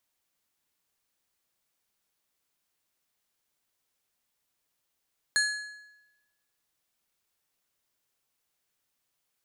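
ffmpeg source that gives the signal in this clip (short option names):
-f lavfi -i "aevalsrc='0.0794*pow(10,-3*t/1.01)*sin(2*PI*1690*t)+0.0531*pow(10,-3*t/0.767)*sin(2*PI*4225*t)+0.0355*pow(10,-3*t/0.666)*sin(2*PI*6760*t)+0.0237*pow(10,-3*t/0.623)*sin(2*PI*8450*t)+0.0158*pow(10,-3*t/0.576)*sin(2*PI*10985*t)':d=1.55:s=44100"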